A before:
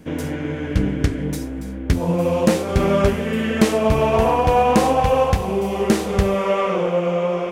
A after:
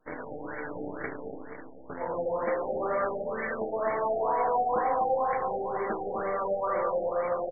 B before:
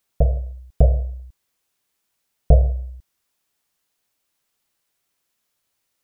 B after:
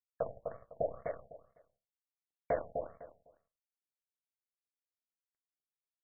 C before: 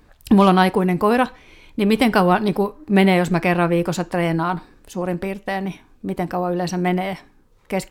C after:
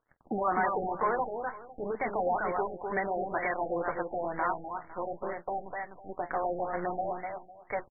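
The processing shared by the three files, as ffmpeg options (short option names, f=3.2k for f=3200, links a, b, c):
-filter_complex "[0:a]highpass=620,acrossover=split=5700[a][b];[b]acompressor=threshold=-53dB:ratio=4:attack=1:release=60[c];[a][c]amix=inputs=2:normalize=0,highshelf=f=3.2k:g=9,bandreject=f=2.1k:w=20,asplit=2[d][e];[e]acompressor=threshold=-27dB:ratio=6,volume=-0.5dB[f];[d][f]amix=inputs=2:normalize=0,acrusher=bits=5:dc=4:mix=0:aa=0.000001,aeval=exprs='sgn(val(0))*max(abs(val(0))-0.00531,0)':c=same,flanger=delay=6.3:depth=7.4:regen=-66:speed=0.54:shape=triangular,asoftclip=type=tanh:threshold=-18dB,aecho=1:1:252|504|756:0.562|0.118|0.0248,afftfilt=real='re*lt(b*sr/1024,820*pow(2300/820,0.5+0.5*sin(2*PI*2.1*pts/sr)))':imag='im*lt(b*sr/1024,820*pow(2300/820,0.5+0.5*sin(2*PI*2.1*pts/sr)))':win_size=1024:overlap=0.75,volume=-3dB"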